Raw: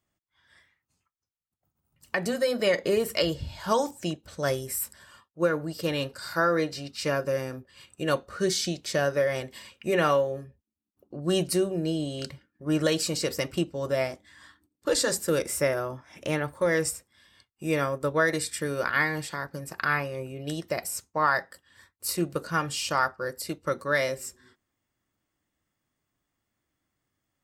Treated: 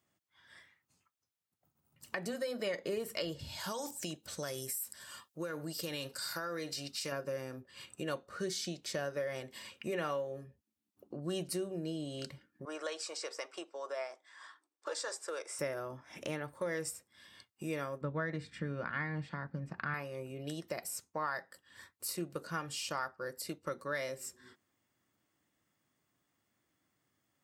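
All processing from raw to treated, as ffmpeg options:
-filter_complex "[0:a]asettb=1/sr,asplit=3[a][b][c];[a]atrim=end=3.394[d];[b]atrim=start=3.39:end=7.12,asetpts=PTS-STARTPTS,afade=t=in:d=0.004:c=qsin,afade=t=out:st=3.726:d=0.004:c=qsin,highshelf=f=3.3k:g=11.5,acompressor=threshold=-26dB:ratio=5:attack=3.2:release=140:knee=1:detection=peak[e];[c]atrim=start=7.116[f];[d][e]acrossfade=d=0.004:c1=hsin:c2=qsin[g];[g][f]acrossfade=d=0.004:c1=qsin:c2=hsin,asettb=1/sr,asplit=3[h][i][j];[h]atrim=end=12.654[k];[i]atrim=start=12.65:end=15.59,asetpts=PTS-STARTPTS,afade=t=in:d=0.004:c=qsin,afade=t=out:st=2.936:d=0.004:c=qsin,highpass=f=490:w=0.5412,highpass=f=490:w=1.3066,equalizer=f=540:t=q:w=4:g=-5,equalizer=f=1.1k:t=q:w=4:g=3,equalizer=f=1.9k:t=q:w=4:g=-4,equalizer=f=2.9k:t=q:w=4:g=-6,equalizer=f=4.2k:t=q:w=4:g=-7,equalizer=f=6.8k:t=q:w=4:g=-5,lowpass=f=7.8k:w=0.5412,lowpass=f=7.8k:w=1.3066,deesser=0.35[l];[j]atrim=start=15.586[m];[k][l]acrossfade=d=0.004:c1=hsin:c2=qsin[n];[n][m]acrossfade=d=0.004:c1=qsin:c2=hsin,asettb=1/sr,asplit=3[o][p][q];[o]atrim=end=18.014[r];[p]atrim=start=18.01:end=19.94,asetpts=PTS-STARTPTS,afade=t=in:d=0.004:c=qsin,afade=t=out:st=1.926:d=0.004:c=qsin,lowpass=2.6k,lowshelf=f=280:t=q:w=1.5:g=7.5[s];[q]atrim=start=19.936[t];[r][s]acrossfade=d=0.004:c1=hsin:c2=qsin[u];[u][t]acrossfade=d=0.004:c1=qsin:c2=hsin,highpass=110,acompressor=threshold=-47dB:ratio=2,volume=1.5dB"

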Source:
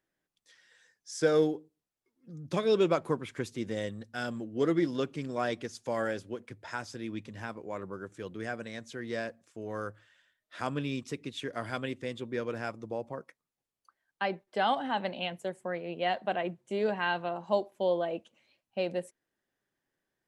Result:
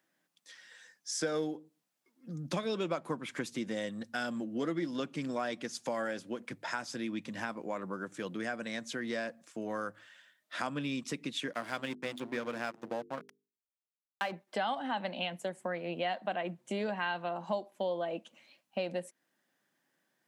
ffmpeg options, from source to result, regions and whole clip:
-filter_complex "[0:a]asettb=1/sr,asplit=3[a][b][c];[a]atrim=end=11.534[d];[b]atrim=start=11.53:end=14.32,asetpts=PTS-STARTPTS,afade=t=in:d=0.004:c=qsin,afade=t=out:st=2.786:d=0.004:c=qsin,aeval=exprs='sgn(val(0))*max(abs(val(0))-0.00562,0)':c=same,bandreject=f=50:t=h:w=6,bandreject=f=100:t=h:w=6,bandreject=f=150:t=h:w=6,bandreject=f=200:t=h:w=6,bandreject=f=250:t=h:w=6,bandreject=f=300:t=h:w=6,bandreject=f=350:t=h:w=6,bandreject=f=400:t=h:w=6,bandreject=f=450:t=h:w=6[e];[c]atrim=start=14.316[f];[d][e]acrossfade=d=0.004:c1=hsin:c2=qsin[g];[g][f]acrossfade=d=0.004:c1=qsin:c2=hsin,highpass=f=160:w=0.5412,highpass=f=160:w=1.3066,equalizer=f=410:t=o:w=0.44:g=-8,acompressor=threshold=-42dB:ratio=3,volume=7.5dB"

